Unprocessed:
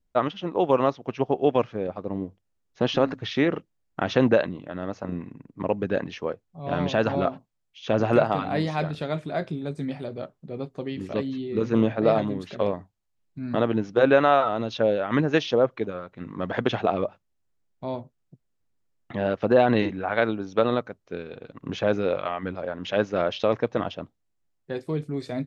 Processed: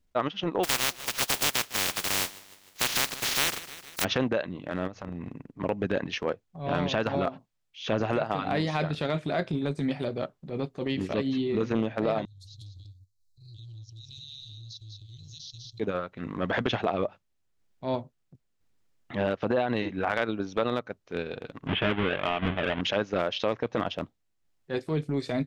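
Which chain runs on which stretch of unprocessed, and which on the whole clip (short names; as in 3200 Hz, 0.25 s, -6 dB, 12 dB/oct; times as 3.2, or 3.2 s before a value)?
0.63–4.03 spectral contrast lowered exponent 0.12 + feedback echo 0.153 s, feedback 48%, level -19 dB
4.87–5.3 low shelf 130 Hz +10 dB + compressor 16:1, threshold -34 dBFS
12.25–15.8 Chebyshev band-stop 110–4000 Hz, order 5 + echo 0.194 s -7.5 dB + compressor 8:1, threshold -46 dBFS
21.67–22.81 half-waves squared off + Chebyshev low-pass 3300 Hz, order 5 + notch 520 Hz, Q 7.7
whole clip: bell 3300 Hz +4 dB 2.5 oct; transient shaper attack -9 dB, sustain -5 dB; compressor 12:1, threshold -27 dBFS; gain +4.5 dB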